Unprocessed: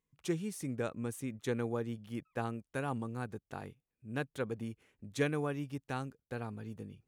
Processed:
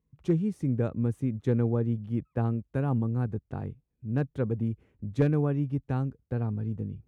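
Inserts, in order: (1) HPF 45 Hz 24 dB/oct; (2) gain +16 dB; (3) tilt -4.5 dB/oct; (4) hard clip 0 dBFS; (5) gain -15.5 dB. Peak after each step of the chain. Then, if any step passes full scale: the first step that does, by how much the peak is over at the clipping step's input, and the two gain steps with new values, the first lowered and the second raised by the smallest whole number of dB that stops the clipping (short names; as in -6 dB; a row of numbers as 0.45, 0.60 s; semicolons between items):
-18.5, -2.5, +4.5, 0.0, -15.5 dBFS; step 3, 4.5 dB; step 2 +11 dB, step 5 -10.5 dB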